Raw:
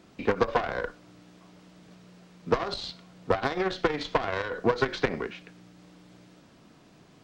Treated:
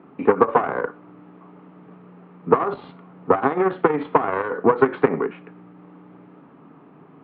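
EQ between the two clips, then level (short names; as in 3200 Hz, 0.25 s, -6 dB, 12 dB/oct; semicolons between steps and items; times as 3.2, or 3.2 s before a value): air absorption 290 m; speaker cabinet 130–2700 Hz, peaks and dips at 160 Hz +7 dB, 270 Hz +9 dB, 420 Hz +9 dB, 860 Hz +9 dB, 1200 Hz +10 dB; +3.0 dB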